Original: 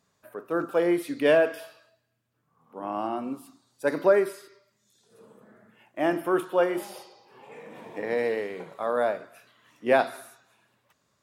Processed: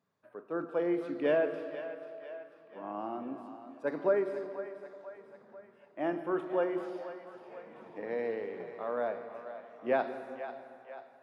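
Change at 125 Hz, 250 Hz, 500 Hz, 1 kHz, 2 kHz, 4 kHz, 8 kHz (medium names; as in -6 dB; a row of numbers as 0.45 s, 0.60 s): -7.5 dB, -6.5 dB, -7.0 dB, -8.0 dB, -10.0 dB, under -10 dB, under -20 dB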